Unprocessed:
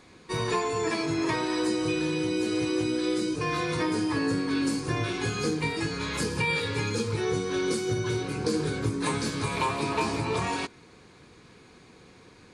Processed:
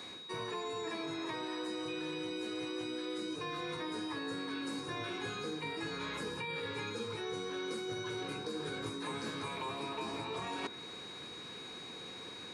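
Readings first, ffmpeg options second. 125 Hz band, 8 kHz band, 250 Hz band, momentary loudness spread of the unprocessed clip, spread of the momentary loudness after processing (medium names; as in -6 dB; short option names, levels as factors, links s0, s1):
-17.0 dB, -14.0 dB, -12.5 dB, 3 LU, 6 LU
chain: -filter_complex "[0:a]acrossover=split=520|2300[s0][s1][s2];[s0]acompressor=threshold=0.0282:ratio=4[s3];[s1]acompressor=threshold=0.02:ratio=4[s4];[s2]acompressor=threshold=0.00447:ratio=4[s5];[s3][s4][s5]amix=inputs=3:normalize=0,highpass=f=290:p=1,areverse,acompressor=threshold=0.00708:ratio=6,areverse,aeval=exprs='val(0)+0.00251*sin(2*PI*3800*n/s)':c=same,volume=1.78"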